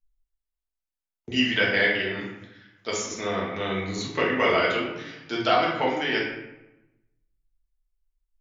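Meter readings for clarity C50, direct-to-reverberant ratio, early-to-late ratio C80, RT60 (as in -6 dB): 2.0 dB, -5.0 dB, 5.5 dB, 0.95 s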